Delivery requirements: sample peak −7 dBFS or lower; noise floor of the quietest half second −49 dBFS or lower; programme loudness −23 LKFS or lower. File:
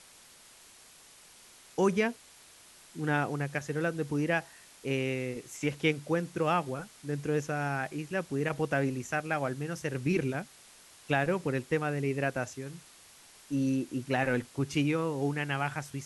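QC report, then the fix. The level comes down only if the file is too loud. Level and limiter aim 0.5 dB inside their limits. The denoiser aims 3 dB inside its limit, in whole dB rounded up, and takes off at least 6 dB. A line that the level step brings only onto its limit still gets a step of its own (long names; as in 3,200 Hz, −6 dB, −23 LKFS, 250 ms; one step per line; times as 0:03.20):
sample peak −14.0 dBFS: in spec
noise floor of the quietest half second −56 dBFS: in spec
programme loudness −31.5 LKFS: in spec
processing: no processing needed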